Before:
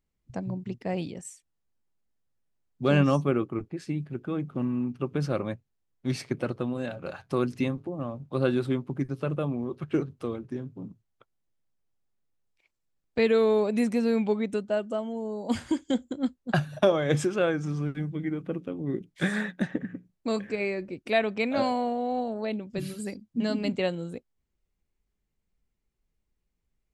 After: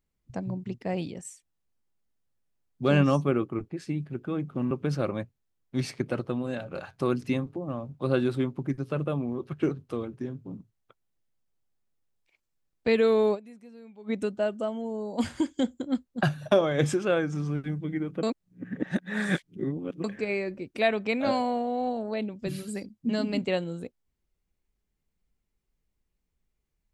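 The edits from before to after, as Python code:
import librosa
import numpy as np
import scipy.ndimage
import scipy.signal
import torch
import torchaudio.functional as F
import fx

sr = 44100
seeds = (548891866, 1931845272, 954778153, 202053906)

y = fx.edit(x, sr, fx.cut(start_s=4.71, length_s=0.31),
    fx.fade_down_up(start_s=13.65, length_s=0.76, db=-23.5, fade_s=0.24, curve='exp'),
    fx.reverse_span(start_s=18.54, length_s=1.81), tone=tone)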